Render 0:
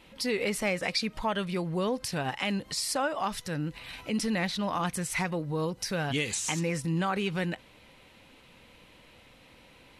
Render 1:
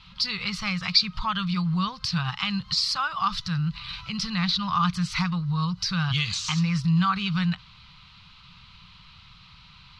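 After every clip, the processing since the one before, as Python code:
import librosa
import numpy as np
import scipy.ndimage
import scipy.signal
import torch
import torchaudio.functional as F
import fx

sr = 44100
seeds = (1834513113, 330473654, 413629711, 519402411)

y = fx.curve_eq(x, sr, hz=(180.0, 270.0, 580.0, 1200.0, 1800.0, 4500.0, 9300.0), db=(0, -28, -29, 3, -11, 4, -26))
y = y * librosa.db_to_amplitude(9.0)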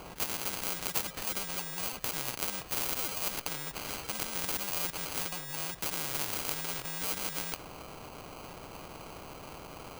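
y = fx.sample_hold(x, sr, seeds[0], rate_hz=1800.0, jitter_pct=0)
y = fx.spectral_comp(y, sr, ratio=4.0)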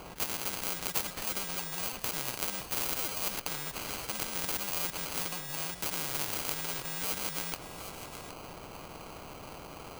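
y = x + 10.0 ** (-12.0 / 20.0) * np.pad(x, (int(768 * sr / 1000.0), 0))[:len(x)]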